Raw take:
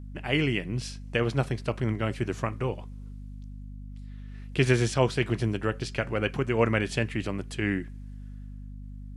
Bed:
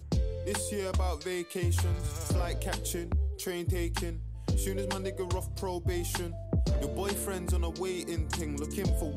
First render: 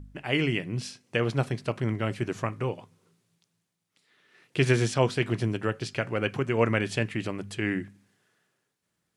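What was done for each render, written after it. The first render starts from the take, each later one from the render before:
hum removal 50 Hz, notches 5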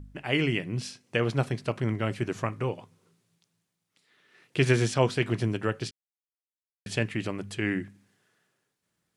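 0:05.91–0:06.86: silence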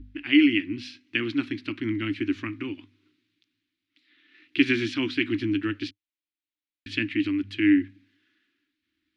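drawn EQ curve 100 Hz 0 dB, 150 Hz −25 dB, 300 Hz +15 dB, 460 Hz −21 dB, 690 Hz −23 dB, 1,500 Hz −1 dB, 2,300 Hz +6 dB, 3,900 Hz +4 dB, 8,300 Hz −21 dB, 12,000 Hz −18 dB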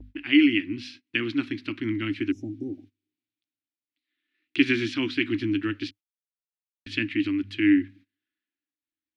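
0:02.34–0:03.21: healed spectral selection 800–5,100 Hz after
noise gate −48 dBFS, range −20 dB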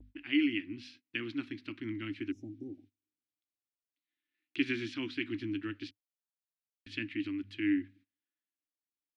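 level −10.5 dB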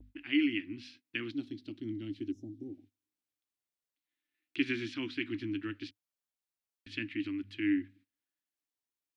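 0:01.31–0:02.60: flat-topped bell 1,600 Hz −15.5 dB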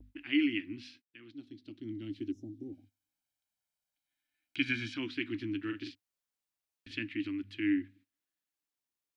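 0:01.02–0:02.18: fade in
0:02.72–0:04.97: comb filter 1.3 ms, depth 75%
0:05.60–0:06.94: double-tracking delay 43 ms −5.5 dB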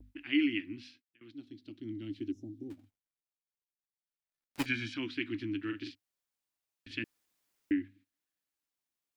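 0:00.57–0:01.21: fade out equal-power, to −21 dB
0:02.70–0:04.66: gap after every zero crossing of 0.2 ms
0:07.04–0:07.71: fill with room tone

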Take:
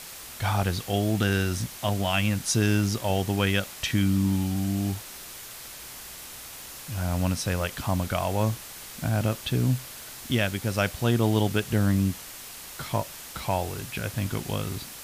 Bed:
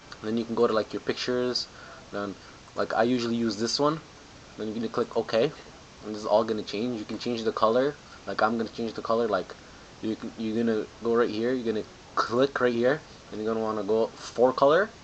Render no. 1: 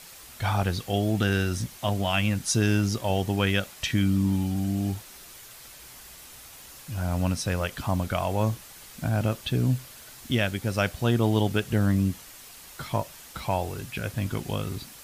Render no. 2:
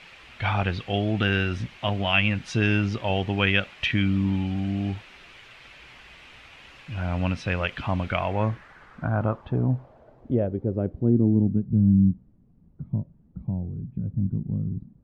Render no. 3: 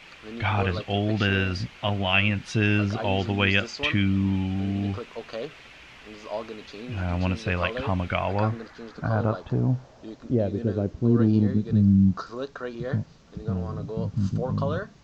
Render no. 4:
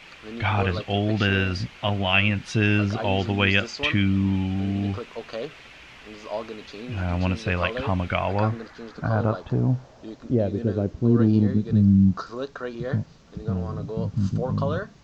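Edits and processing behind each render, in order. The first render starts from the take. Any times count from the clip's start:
broadband denoise 6 dB, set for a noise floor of −42 dBFS
low-pass filter sweep 2,600 Hz → 190 Hz, 0:08.07–0:11.76
mix in bed −10 dB
level +1.5 dB

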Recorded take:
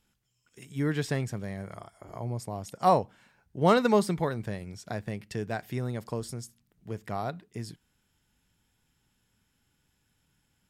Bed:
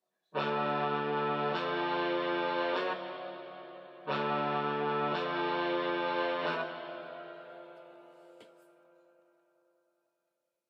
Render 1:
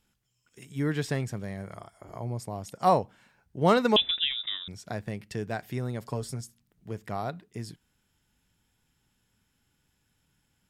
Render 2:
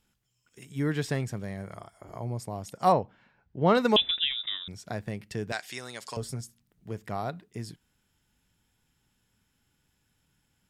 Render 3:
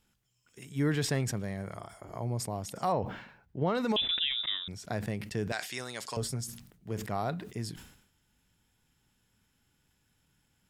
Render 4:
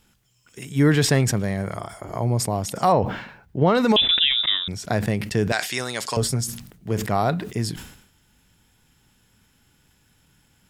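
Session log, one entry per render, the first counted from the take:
0:03.96–0:04.68: voice inversion scrambler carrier 3,700 Hz; 0:06.01–0:06.41: comb filter 7.3 ms, depth 55%
0:02.92–0:03.75: high-frequency loss of the air 200 metres; 0:05.52–0:06.17: meter weighting curve ITU-R 468
brickwall limiter −20 dBFS, peak gain reduction 10 dB; level that may fall only so fast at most 79 dB per second
level +11.5 dB

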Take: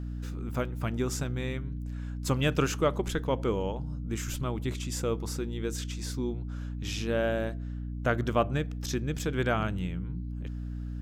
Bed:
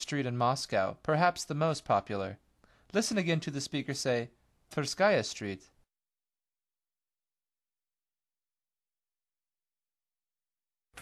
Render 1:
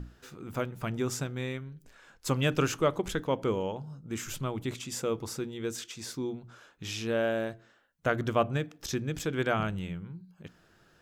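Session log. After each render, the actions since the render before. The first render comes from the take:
mains-hum notches 60/120/180/240/300 Hz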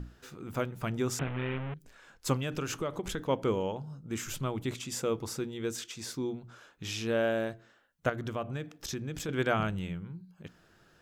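0:01.19–0:01.74: linear delta modulator 16 kbit/s, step −30 dBFS
0:02.36–0:03.29: downward compressor 4 to 1, threshold −30 dBFS
0:08.09–0:09.29: downward compressor 2.5 to 1, threshold −34 dBFS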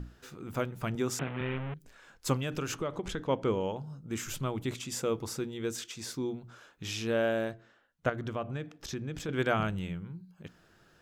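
0:00.95–0:01.41: high-pass filter 130 Hz
0:02.75–0:03.63: high-frequency loss of the air 51 metres
0:07.51–0:09.35: high-shelf EQ 7,200 Hz −10 dB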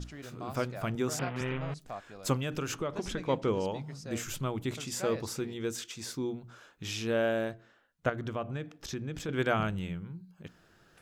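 mix in bed −14 dB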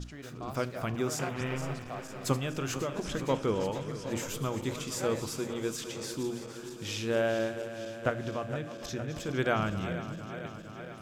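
feedback delay that plays each chunk backwards 231 ms, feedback 83%, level −12 dB
four-comb reverb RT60 0.46 s, combs from 26 ms, DRR 17.5 dB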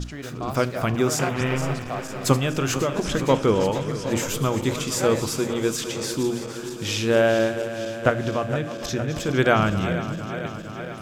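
level +10 dB

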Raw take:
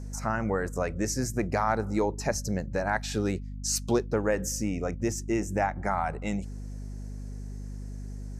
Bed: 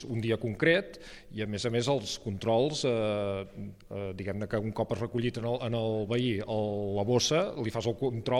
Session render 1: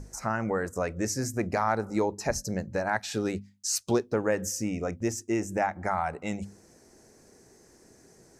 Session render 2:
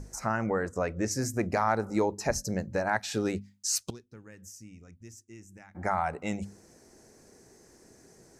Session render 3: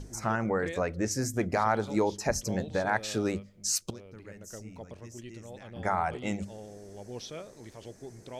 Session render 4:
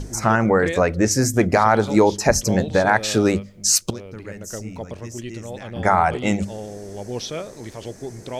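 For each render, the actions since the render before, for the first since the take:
mains-hum notches 50/100/150/200/250 Hz
0:00.46–0:01.11: high-frequency loss of the air 63 metres; 0:03.90–0:05.75: guitar amp tone stack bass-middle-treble 6-0-2
mix in bed −15 dB
level +12 dB; brickwall limiter −3 dBFS, peak gain reduction 2.5 dB

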